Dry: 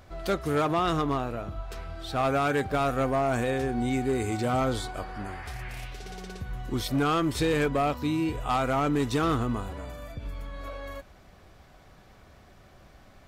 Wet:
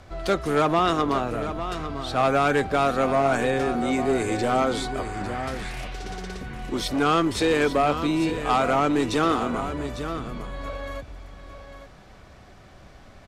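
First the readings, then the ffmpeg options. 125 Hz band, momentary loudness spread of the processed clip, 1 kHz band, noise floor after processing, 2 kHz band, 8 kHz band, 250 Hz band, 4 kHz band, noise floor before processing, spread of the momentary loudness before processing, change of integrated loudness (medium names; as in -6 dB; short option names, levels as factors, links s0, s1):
-0.5 dB, 14 LU, +5.5 dB, -48 dBFS, +5.5 dB, +4.0 dB, +3.5 dB, +5.5 dB, -54 dBFS, 14 LU, +4.0 dB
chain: -filter_complex "[0:a]lowpass=9700,aecho=1:1:851:0.299,acrossover=split=210|1300[s0][s1][s2];[s0]aeval=exprs='0.0168*(abs(mod(val(0)/0.0168+3,4)-2)-1)':c=same[s3];[s3][s1][s2]amix=inputs=3:normalize=0,volume=1.78"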